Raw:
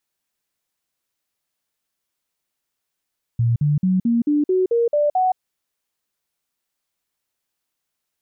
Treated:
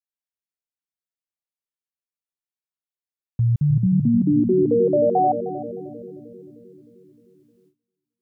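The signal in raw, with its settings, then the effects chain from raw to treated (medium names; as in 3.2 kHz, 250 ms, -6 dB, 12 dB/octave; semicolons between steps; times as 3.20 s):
stepped sine 117 Hz up, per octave 3, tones 9, 0.17 s, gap 0.05 s -14.5 dBFS
on a send: bucket-brigade echo 307 ms, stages 1024, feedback 63%, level -6 dB; on the sum: gate with hold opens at -50 dBFS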